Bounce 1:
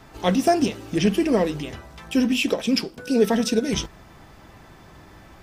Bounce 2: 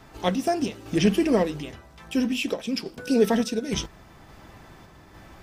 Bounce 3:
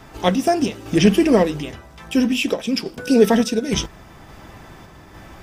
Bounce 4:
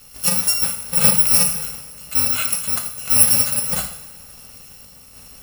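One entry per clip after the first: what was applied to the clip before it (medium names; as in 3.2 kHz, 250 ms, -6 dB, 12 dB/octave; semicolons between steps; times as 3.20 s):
random-step tremolo
band-stop 4.2 kHz, Q 17; trim +6.5 dB
bit-reversed sample order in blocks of 128 samples; bass shelf 340 Hz -6.5 dB; two-slope reverb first 0.63 s, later 2.9 s, from -17 dB, DRR 3 dB; trim -1.5 dB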